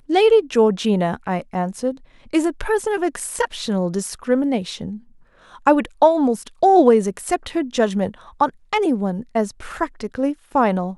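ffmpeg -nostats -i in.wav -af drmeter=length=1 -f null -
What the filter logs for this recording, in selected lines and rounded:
Channel 1: DR: 9.3
Overall DR: 9.3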